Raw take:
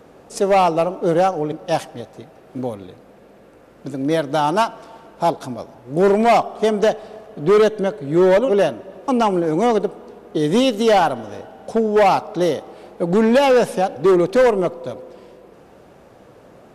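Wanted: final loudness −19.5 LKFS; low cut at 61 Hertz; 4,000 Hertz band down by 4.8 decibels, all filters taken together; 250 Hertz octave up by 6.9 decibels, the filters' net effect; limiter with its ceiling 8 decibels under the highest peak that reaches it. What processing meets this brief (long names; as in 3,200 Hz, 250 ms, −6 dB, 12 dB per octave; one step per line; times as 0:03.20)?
high-pass filter 61 Hz
parametric band 250 Hz +9 dB
parametric band 4,000 Hz −7 dB
level −1 dB
brickwall limiter −10 dBFS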